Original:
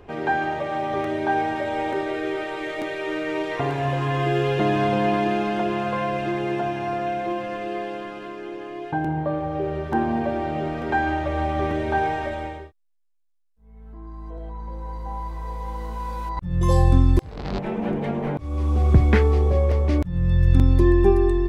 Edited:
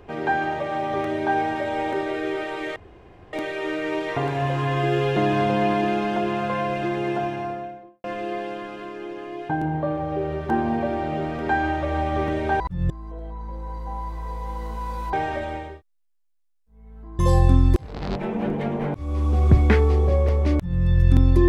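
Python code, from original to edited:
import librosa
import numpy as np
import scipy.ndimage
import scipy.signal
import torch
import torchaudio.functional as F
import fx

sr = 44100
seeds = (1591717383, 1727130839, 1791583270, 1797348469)

y = fx.studio_fade_out(x, sr, start_s=6.62, length_s=0.85)
y = fx.edit(y, sr, fx.insert_room_tone(at_s=2.76, length_s=0.57),
    fx.swap(start_s=12.03, length_s=2.06, other_s=16.32, other_length_s=0.3), tone=tone)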